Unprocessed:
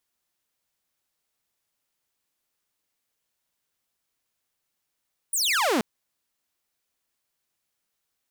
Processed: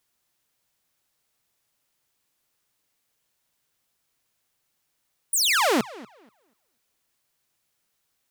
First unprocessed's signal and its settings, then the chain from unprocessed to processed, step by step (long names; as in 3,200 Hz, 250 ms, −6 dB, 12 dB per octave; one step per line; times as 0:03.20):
single falling chirp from 10,000 Hz, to 200 Hz, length 0.48 s saw, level −18 dB
parametric band 130 Hz +5.5 dB 0.33 octaves
in parallel at −2.5 dB: brickwall limiter −26.5 dBFS
on the sum: tape delay 241 ms, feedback 22%, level −17.5 dB, low-pass 4,400 Hz